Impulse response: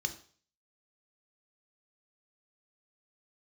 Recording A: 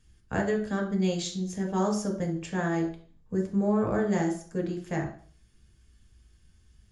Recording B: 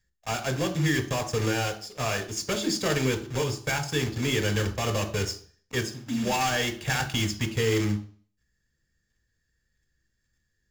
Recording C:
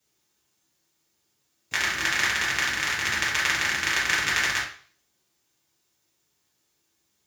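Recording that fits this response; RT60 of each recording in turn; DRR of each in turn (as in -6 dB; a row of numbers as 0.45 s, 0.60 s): B; 0.45 s, 0.45 s, 0.45 s; 1.5 dB, 6.5 dB, -7.0 dB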